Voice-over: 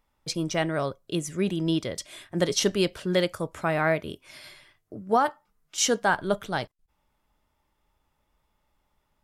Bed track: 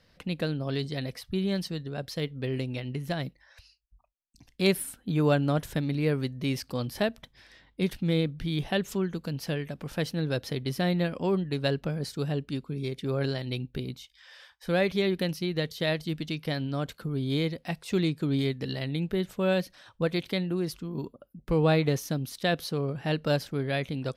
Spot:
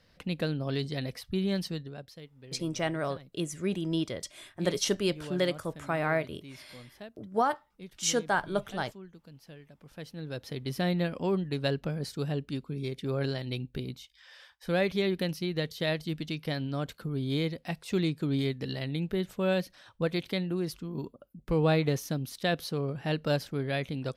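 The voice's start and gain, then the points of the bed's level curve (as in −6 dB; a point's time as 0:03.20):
2.25 s, −4.5 dB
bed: 0:01.74 −1 dB
0:02.28 −18.5 dB
0:09.66 −18.5 dB
0:10.78 −2 dB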